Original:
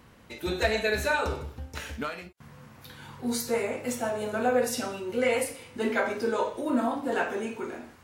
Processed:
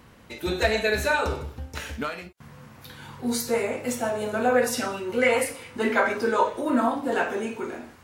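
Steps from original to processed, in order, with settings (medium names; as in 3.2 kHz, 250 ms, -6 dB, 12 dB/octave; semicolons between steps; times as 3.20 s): 4.50–6.90 s: sweeping bell 4.7 Hz 990–2000 Hz +7 dB; trim +3 dB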